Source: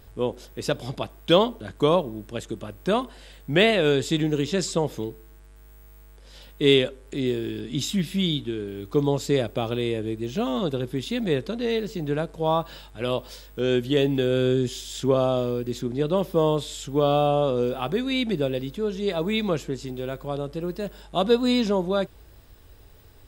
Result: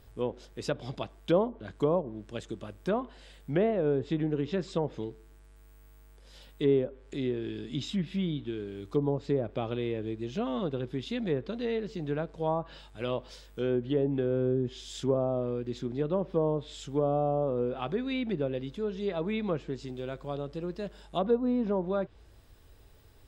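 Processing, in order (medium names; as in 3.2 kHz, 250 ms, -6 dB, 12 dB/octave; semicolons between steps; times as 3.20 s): low-pass that closes with the level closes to 850 Hz, closed at -17 dBFS; trim -6 dB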